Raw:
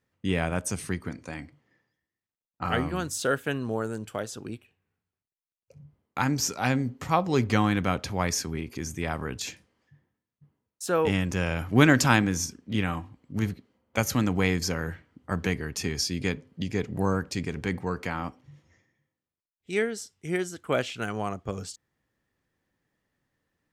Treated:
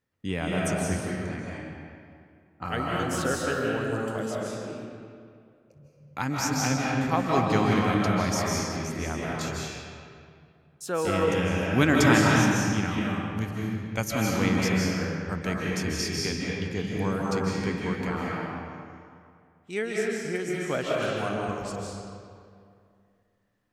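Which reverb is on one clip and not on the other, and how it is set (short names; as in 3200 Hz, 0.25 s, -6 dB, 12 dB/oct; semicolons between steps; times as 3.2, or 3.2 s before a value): digital reverb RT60 2.3 s, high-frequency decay 0.7×, pre-delay 0.115 s, DRR -4 dB; gain -4 dB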